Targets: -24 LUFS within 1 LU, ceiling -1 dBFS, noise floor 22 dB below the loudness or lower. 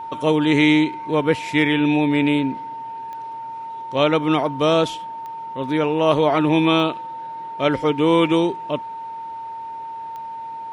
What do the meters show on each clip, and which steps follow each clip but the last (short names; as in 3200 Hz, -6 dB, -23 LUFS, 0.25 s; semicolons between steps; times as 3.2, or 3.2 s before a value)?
clicks 4; steady tone 910 Hz; tone level -29 dBFS; loudness -19.0 LUFS; peak -3.5 dBFS; loudness target -24.0 LUFS
-> de-click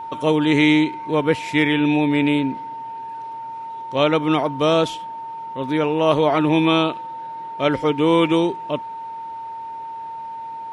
clicks 0; steady tone 910 Hz; tone level -29 dBFS
-> notch 910 Hz, Q 30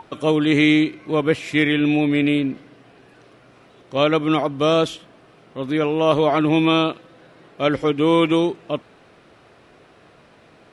steady tone none; loudness -19.0 LUFS; peak -4.0 dBFS; loudness target -24.0 LUFS
-> gain -5 dB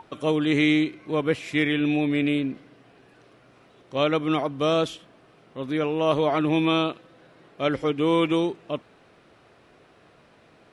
loudness -24.0 LUFS; peak -9.0 dBFS; noise floor -57 dBFS